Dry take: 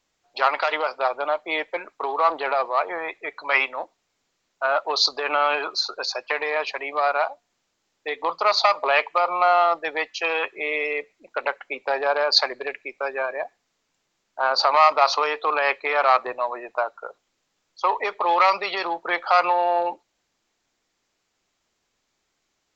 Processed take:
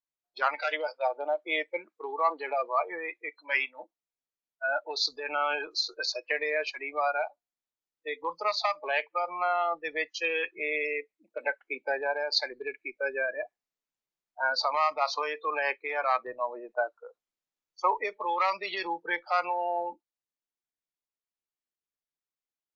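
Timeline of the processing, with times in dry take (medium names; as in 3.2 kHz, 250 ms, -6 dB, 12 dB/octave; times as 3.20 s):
0.56–3.81 s: high-pass 230 Hz 6 dB/octave
whole clip: dynamic bell 1.5 kHz, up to +7 dB, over -40 dBFS, Q 6.6; spectral noise reduction 20 dB; gain riding within 4 dB 0.5 s; trim -7 dB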